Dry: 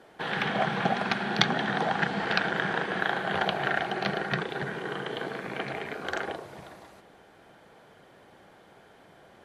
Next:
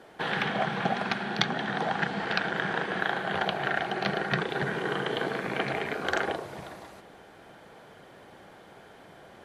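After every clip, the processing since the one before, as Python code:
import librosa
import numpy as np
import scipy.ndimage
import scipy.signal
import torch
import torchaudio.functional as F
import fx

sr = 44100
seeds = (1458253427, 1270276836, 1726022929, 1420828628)

y = fx.rider(x, sr, range_db=4, speed_s=0.5)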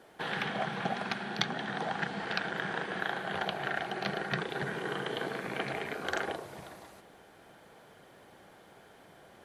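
y = fx.high_shelf(x, sr, hz=8100.0, db=9.0)
y = F.gain(torch.from_numpy(y), -5.5).numpy()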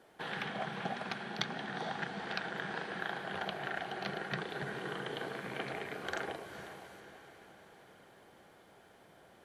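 y = fx.echo_diffused(x, sr, ms=450, feedback_pct=56, wet_db=-11.5)
y = F.gain(torch.from_numpy(y), -5.0).numpy()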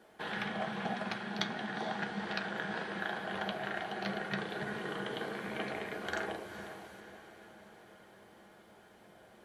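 y = fx.rev_fdn(x, sr, rt60_s=0.39, lf_ratio=1.2, hf_ratio=0.55, size_ms=28.0, drr_db=5.0)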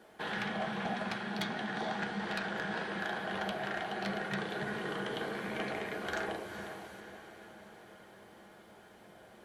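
y = 10.0 ** (-30.0 / 20.0) * np.tanh(x / 10.0 ** (-30.0 / 20.0))
y = F.gain(torch.from_numpy(y), 2.5).numpy()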